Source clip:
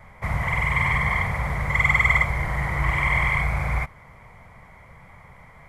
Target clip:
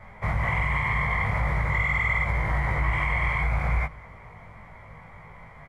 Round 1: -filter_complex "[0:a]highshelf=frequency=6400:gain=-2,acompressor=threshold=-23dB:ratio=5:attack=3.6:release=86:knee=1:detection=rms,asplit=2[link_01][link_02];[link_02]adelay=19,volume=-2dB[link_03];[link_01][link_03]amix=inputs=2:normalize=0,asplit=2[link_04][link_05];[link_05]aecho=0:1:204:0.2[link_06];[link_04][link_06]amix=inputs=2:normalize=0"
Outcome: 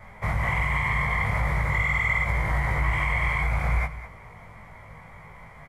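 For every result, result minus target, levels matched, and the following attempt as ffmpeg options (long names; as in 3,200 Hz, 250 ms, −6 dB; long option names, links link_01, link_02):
echo-to-direct +10 dB; 8,000 Hz band +6.0 dB
-filter_complex "[0:a]highshelf=frequency=6400:gain=-2,acompressor=threshold=-23dB:ratio=5:attack=3.6:release=86:knee=1:detection=rms,asplit=2[link_01][link_02];[link_02]adelay=19,volume=-2dB[link_03];[link_01][link_03]amix=inputs=2:normalize=0,asplit=2[link_04][link_05];[link_05]aecho=0:1:204:0.0631[link_06];[link_04][link_06]amix=inputs=2:normalize=0"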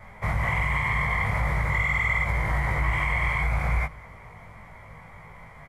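8,000 Hz band +6.0 dB
-filter_complex "[0:a]highshelf=frequency=6400:gain=-13,acompressor=threshold=-23dB:ratio=5:attack=3.6:release=86:knee=1:detection=rms,asplit=2[link_01][link_02];[link_02]adelay=19,volume=-2dB[link_03];[link_01][link_03]amix=inputs=2:normalize=0,asplit=2[link_04][link_05];[link_05]aecho=0:1:204:0.0631[link_06];[link_04][link_06]amix=inputs=2:normalize=0"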